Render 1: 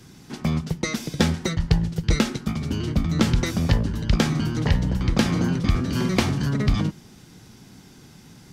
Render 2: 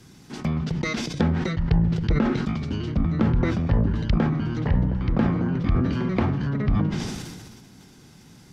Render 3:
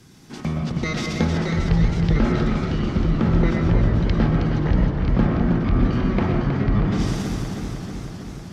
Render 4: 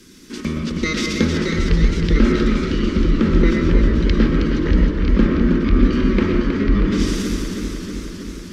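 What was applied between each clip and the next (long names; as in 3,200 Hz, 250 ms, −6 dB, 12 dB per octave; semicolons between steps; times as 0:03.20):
treble cut that deepens with the level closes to 1,300 Hz, closed at −17 dBFS; level that may fall only so fast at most 33 dB per second; level −2.5 dB
on a send at −2.5 dB: convolution reverb RT60 0.65 s, pre-delay 80 ms; on the sum: feedback echo with a swinging delay time 316 ms, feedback 72%, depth 70 cents, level −7 dB
phaser with its sweep stopped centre 310 Hz, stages 4; level +7 dB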